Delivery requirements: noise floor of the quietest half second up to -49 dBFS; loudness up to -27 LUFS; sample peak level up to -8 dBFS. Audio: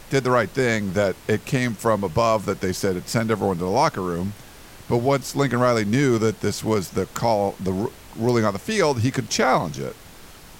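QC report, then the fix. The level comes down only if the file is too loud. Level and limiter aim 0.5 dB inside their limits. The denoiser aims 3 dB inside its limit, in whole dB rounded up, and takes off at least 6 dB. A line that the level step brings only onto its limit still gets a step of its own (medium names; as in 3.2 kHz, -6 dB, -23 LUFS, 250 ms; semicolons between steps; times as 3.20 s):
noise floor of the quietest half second -44 dBFS: fail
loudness -22.5 LUFS: fail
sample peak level -6.5 dBFS: fail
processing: noise reduction 6 dB, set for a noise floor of -44 dBFS; trim -5 dB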